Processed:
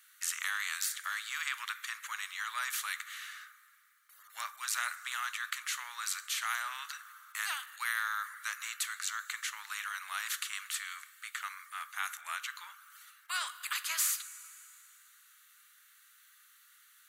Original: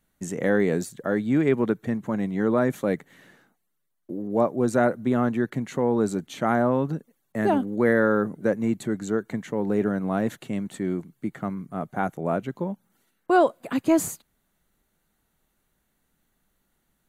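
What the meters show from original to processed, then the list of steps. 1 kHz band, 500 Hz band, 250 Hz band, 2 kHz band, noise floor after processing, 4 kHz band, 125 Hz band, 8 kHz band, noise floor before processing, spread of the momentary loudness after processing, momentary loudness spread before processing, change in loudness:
−11.0 dB, below −40 dB, below −40 dB, −2.0 dB, −63 dBFS, +8.5 dB, below −40 dB, +4.5 dB, −74 dBFS, 12 LU, 11 LU, −11.0 dB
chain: Chebyshev high-pass filter 1,200 Hz, order 6
coupled-rooms reverb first 0.26 s, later 2.5 s, from −20 dB, DRR 14.5 dB
every bin compressed towards the loudest bin 2 to 1

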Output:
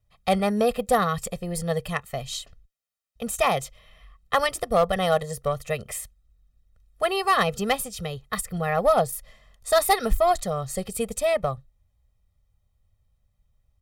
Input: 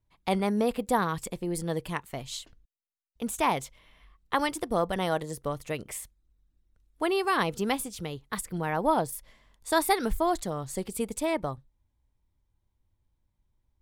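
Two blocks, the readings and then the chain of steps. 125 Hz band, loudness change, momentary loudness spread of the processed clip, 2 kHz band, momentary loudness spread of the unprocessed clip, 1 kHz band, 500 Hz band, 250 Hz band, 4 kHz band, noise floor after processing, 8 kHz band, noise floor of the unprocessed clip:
+4.5 dB, +5.0 dB, 13 LU, +4.5 dB, 12 LU, +4.5 dB, +6.5 dB, 0.0 dB, +5.5 dB, −72 dBFS, +5.0 dB, −77 dBFS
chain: comb filter 1.6 ms, depth 96%
harmonic generator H 3 −16 dB, 6 −43 dB, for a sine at −8 dBFS
hard clipping −18.5 dBFS, distortion −18 dB
level +7.5 dB

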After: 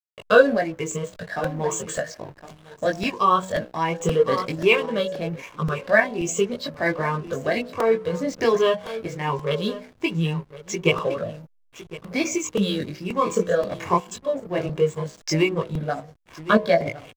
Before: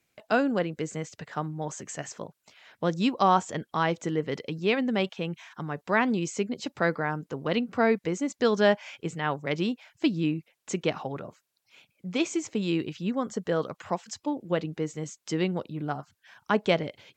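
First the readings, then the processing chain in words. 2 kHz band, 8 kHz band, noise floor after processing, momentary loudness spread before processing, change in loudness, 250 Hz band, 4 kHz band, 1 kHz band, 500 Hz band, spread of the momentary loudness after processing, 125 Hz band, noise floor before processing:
+6.5 dB, +7.5 dB, −56 dBFS, 12 LU, +5.5 dB, +1.5 dB, +5.0 dB, +4.5 dB, +7.0 dB, 11 LU, +5.0 dB, −79 dBFS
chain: rippled gain that drifts along the octave scale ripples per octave 0.72, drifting +1.3 Hz, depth 14 dB
comb filter 1.8 ms, depth 54%
hum removal 62.67 Hz, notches 17
in parallel at −2 dB: downward compressor, threshold −33 dBFS, peak gain reduction 18.5 dB
on the sum: multi-voice chorus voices 2, 0.18 Hz, delay 20 ms, depth 2.4 ms
on a send: single-tap delay 1,059 ms −15.5 dB
on the sum: slack as between gear wheels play −40.5 dBFS
sample-and-hold tremolo
regular buffer underruns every 0.53 s, samples 128, repeat, from 0:00.91
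level +7.5 dB

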